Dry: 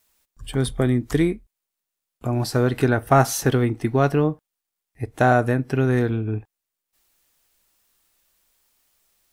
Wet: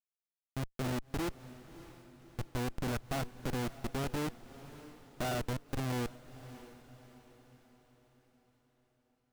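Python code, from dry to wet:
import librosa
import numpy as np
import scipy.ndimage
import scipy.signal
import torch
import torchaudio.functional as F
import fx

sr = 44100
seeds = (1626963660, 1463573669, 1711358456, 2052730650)

y = fx.level_steps(x, sr, step_db=21)
y = fx.schmitt(y, sr, flips_db=-29.0)
y = fx.echo_diffused(y, sr, ms=617, feedback_pct=48, wet_db=-15.5)
y = y * 10.0 ** (-6.0 / 20.0)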